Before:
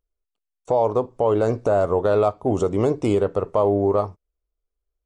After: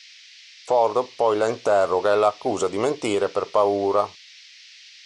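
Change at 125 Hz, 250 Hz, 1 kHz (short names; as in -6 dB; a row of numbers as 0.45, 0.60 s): -13.0, -5.0, +3.0 dB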